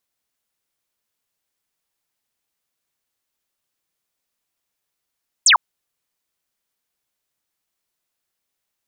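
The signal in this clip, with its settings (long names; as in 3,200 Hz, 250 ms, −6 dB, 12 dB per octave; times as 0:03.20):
single falling chirp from 9,000 Hz, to 830 Hz, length 0.10 s sine, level −8.5 dB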